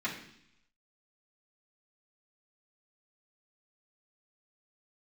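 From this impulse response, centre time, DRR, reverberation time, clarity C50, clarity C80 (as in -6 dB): 26 ms, -9.0 dB, 0.70 s, 7.0 dB, 10.0 dB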